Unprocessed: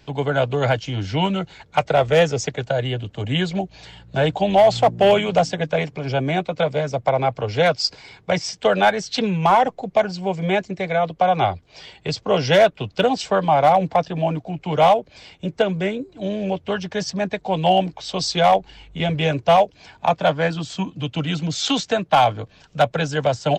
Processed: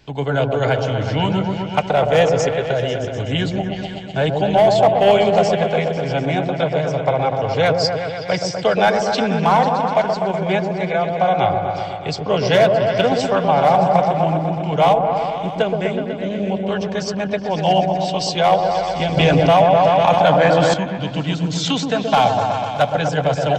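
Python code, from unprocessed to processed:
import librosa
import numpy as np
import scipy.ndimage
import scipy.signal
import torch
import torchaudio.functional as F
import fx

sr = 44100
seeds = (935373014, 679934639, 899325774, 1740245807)

y = fx.echo_opening(x, sr, ms=124, hz=750, octaves=1, feedback_pct=70, wet_db=-3)
y = fx.env_flatten(y, sr, amount_pct=70, at=(19.17, 20.74))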